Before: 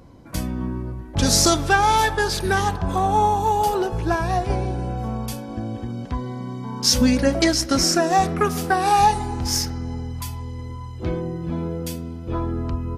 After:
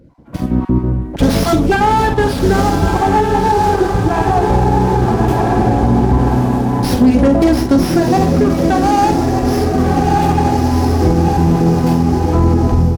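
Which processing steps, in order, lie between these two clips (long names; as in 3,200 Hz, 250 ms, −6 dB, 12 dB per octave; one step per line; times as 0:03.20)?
time-frequency cells dropped at random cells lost 20%
gain into a clipping stage and back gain 16.5 dB
low-shelf EQ 170 Hz −9.5 dB
double-tracking delay 47 ms −8 dB
feedback delay with all-pass diffusion 1,268 ms, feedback 44%, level −3.5 dB
automatic gain control gain up to 16 dB
tilt shelving filter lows +9 dB, about 750 Hz
boost into a limiter +2 dB
windowed peak hold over 5 samples
level −2.5 dB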